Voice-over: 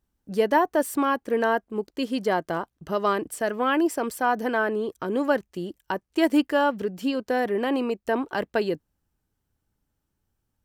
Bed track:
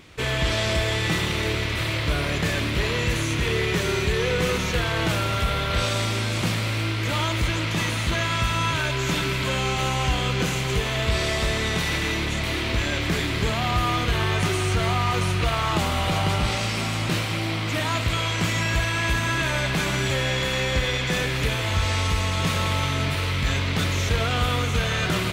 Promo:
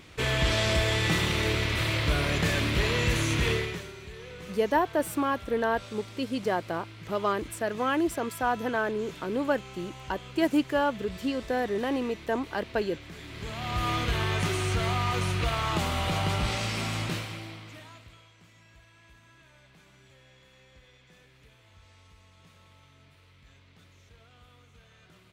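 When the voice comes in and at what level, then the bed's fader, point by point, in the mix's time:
4.20 s, -4.0 dB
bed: 3.51 s -2 dB
3.93 s -20.5 dB
13.14 s -20.5 dB
13.88 s -5 dB
17.00 s -5 dB
18.35 s -33.5 dB

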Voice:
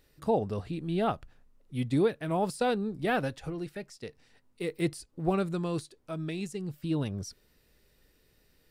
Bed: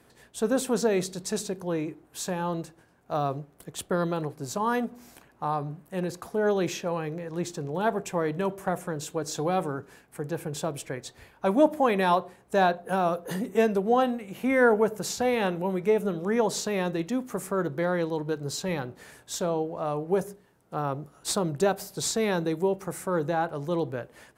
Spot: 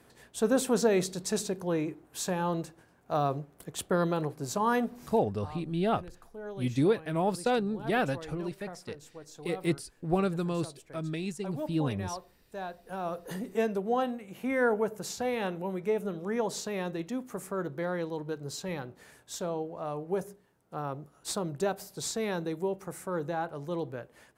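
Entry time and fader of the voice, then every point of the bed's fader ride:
4.85 s, +0.5 dB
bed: 5.05 s -0.5 dB
5.46 s -16.5 dB
12.72 s -16.5 dB
13.21 s -6 dB

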